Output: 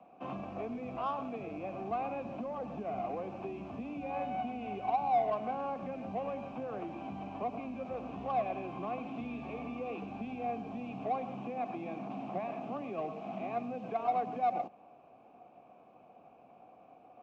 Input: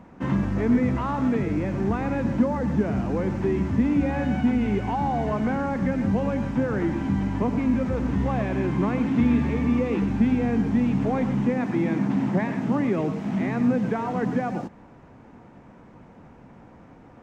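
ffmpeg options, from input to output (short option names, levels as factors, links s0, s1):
-filter_complex "[0:a]acrossover=split=190|3000[s0][s1][s2];[s1]acompressor=threshold=0.0447:ratio=6[s3];[s0][s3][s2]amix=inputs=3:normalize=0,asplit=3[s4][s5][s6];[s4]bandpass=f=730:t=q:w=8,volume=1[s7];[s5]bandpass=f=1090:t=q:w=8,volume=0.501[s8];[s6]bandpass=f=2440:t=q:w=8,volume=0.355[s9];[s7][s8][s9]amix=inputs=3:normalize=0,acrossover=split=230|410|1600[s10][s11][s12][s13];[s12]adynamicsmooth=sensitivity=5:basefreq=1000[s14];[s10][s11][s14][s13]amix=inputs=4:normalize=0,volume=2.24"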